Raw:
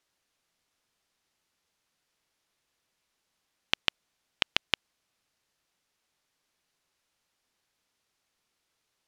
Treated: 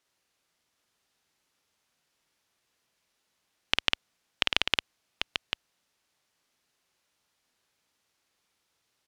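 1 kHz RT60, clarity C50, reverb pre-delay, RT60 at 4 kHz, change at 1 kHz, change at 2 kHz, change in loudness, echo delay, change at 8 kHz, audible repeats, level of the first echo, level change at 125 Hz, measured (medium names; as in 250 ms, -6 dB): no reverb, no reverb, no reverb, no reverb, +2.5 dB, +2.5 dB, 0.0 dB, 51 ms, +2.5 dB, 2, -3.0 dB, +2.0 dB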